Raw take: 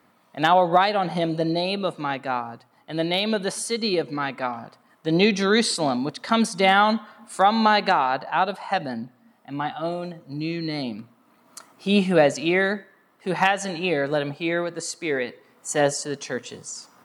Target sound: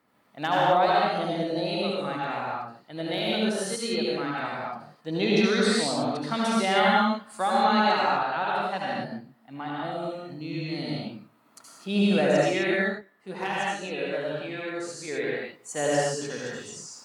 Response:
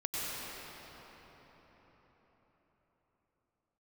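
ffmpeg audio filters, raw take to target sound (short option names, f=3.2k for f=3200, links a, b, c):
-filter_complex "[0:a]asettb=1/sr,asplit=3[a][b][c];[a]atrim=end=12.754[d];[b]atrim=start=12.75:end=15.08,asetpts=PTS-STARTPTS,afade=t=in:d=0.004:c=qsin,afade=t=out:st=2.326:d=0.004:c=qsin,flanger=delay=2.9:depth=8.8:regen=33:speed=1.1:shape=sinusoidal[e];[c]atrim=start=15.076[f];[d][e]acrossfade=d=0.004:c1=hsin:c2=qsin[g];[g][f]acrossfade=d=0.004:c1=qsin:c2=hsin[h];[1:a]atrim=start_sample=2205,afade=t=out:st=0.4:d=0.01,atrim=end_sample=18081,asetrate=57330,aresample=44100[i];[h][i]afir=irnorm=-1:irlink=0,volume=-4.5dB"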